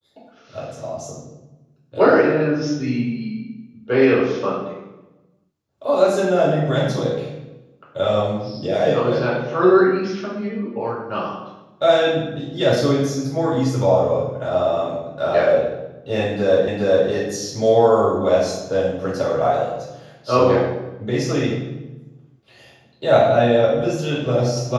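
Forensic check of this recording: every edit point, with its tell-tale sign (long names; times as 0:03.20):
0:16.68: the same again, the last 0.41 s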